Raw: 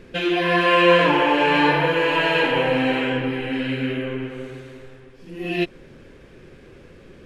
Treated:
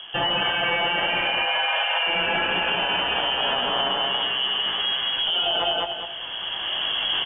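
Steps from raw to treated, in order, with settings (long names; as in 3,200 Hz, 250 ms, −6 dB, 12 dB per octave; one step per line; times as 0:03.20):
loose part that buzzes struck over −27 dBFS, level −16 dBFS
camcorder AGC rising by 17 dB per second
double-tracking delay 18 ms −7 dB
voice inversion scrambler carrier 3,300 Hz
0:01.25–0:02.07: Butterworth high-pass 490 Hz 72 dB per octave
repeating echo 204 ms, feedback 26%, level −3.5 dB
in parallel at −0.5 dB: downward compressor, threshold −29 dBFS, peak gain reduction 19.5 dB
on the sum: brickwall limiter −10.5 dBFS, peak gain reduction 10.5 dB
parametric band 690 Hz +6.5 dB 2.6 octaves
one half of a high-frequency compander encoder only
level −7 dB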